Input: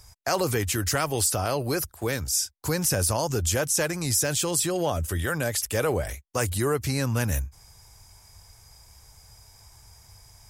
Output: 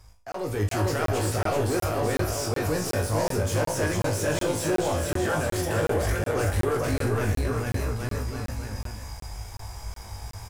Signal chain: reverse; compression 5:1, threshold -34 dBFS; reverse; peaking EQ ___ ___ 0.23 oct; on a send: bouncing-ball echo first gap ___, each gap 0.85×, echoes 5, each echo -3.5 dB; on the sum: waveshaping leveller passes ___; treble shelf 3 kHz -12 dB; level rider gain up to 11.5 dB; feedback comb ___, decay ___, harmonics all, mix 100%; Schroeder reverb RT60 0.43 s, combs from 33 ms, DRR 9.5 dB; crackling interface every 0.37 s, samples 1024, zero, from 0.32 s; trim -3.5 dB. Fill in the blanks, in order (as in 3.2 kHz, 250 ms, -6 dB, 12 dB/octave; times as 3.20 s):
150 Hz, -7.5 dB, 450 ms, 3, 52 Hz, 0.23 s